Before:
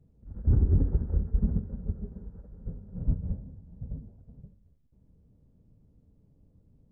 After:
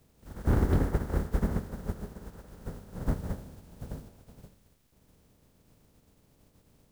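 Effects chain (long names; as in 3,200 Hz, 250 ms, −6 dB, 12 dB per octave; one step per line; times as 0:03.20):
compressing power law on the bin magnitudes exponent 0.51
level −2.5 dB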